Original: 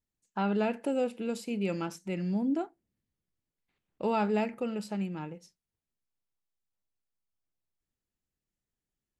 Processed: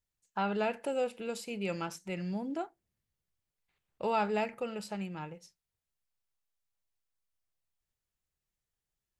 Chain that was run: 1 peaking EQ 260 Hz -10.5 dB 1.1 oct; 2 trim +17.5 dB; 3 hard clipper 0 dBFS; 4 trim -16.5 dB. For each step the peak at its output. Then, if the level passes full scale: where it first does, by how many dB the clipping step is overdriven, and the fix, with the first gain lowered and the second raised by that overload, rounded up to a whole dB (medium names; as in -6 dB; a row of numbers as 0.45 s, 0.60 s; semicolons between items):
-20.5 dBFS, -3.0 dBFS, -3.0 dBFS, -19.5 dBFS; nothing clips